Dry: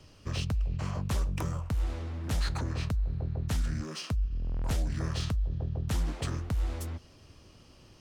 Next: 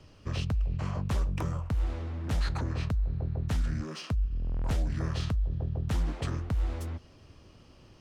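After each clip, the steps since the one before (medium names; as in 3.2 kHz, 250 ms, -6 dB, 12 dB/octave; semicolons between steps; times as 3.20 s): treble shelf 4.7 kHz -9 dB; trim +1 dB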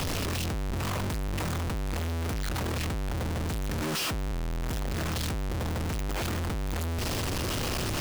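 one-bit comparator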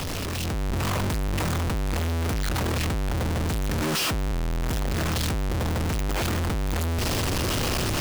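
level rider gain up to 5 dB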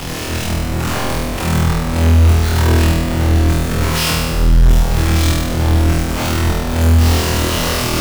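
flutter echo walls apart 4.2 m, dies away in 1.3 s; trim +3 dB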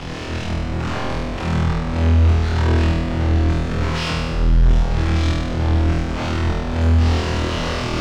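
distance through air 130 m; trim -4 dB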